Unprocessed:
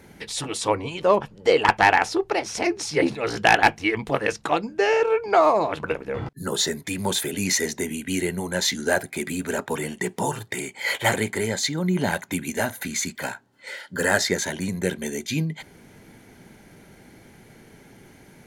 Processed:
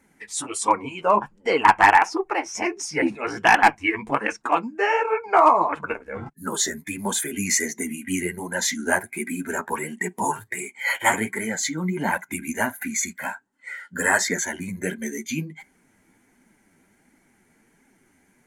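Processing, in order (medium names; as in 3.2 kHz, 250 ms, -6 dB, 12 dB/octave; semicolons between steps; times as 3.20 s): flange 1.4 Hz, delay 3.2 ms, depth 9.6 ms, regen +8%; spectral noise reduction 11 dB; dynamic bell 1 kHz, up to +7 dB, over -39 dBFS, Q 2.6; overload inside the chain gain 9 dB; graphic EQ 125/250/500/1000/2000/4000/8000 Hz -7/+6/-4/+4/+5/-6/+10 dB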